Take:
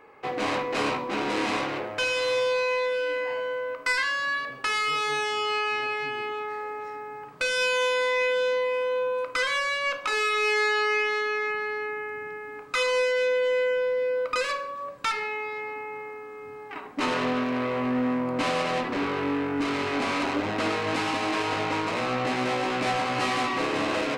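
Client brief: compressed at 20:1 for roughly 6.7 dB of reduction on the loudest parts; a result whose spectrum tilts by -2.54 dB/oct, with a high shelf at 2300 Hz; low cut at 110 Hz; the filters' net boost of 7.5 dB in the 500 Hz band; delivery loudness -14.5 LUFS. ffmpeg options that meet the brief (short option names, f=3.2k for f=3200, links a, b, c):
-af "highpass=110,equalizer=f=500:t=o:g=7.5,highshelf=f=2.3k:g=9,acompressor=threshold=-21dB:ratio=20,volume=10.5dB"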